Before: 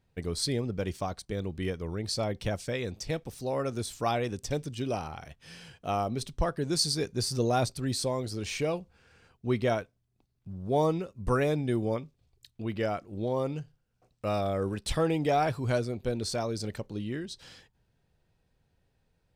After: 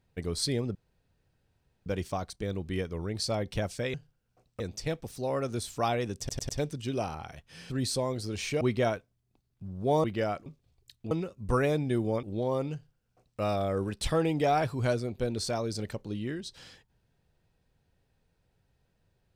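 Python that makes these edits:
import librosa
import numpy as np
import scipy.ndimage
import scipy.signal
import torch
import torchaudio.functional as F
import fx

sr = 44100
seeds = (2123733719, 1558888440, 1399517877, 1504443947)

y = fx.edit(x, sr, fx.insert_room_tone(at_s=0.75, length_s=1.11),
    fx.stutter(start_s=4.42, slice_s=0.1, count=4),
    fx.cut(start_s=5.63, length_s=2.15),
    fx.cut(start_s=8.69, length_s=0.77),
    fx.swap(start_s=10.89, length_s=1.12, other_s=12.66, other_length_s=0.42),
    fx.duplicate(start_s=13.59, length_s=0.66, to_s=2.83), tone=tone)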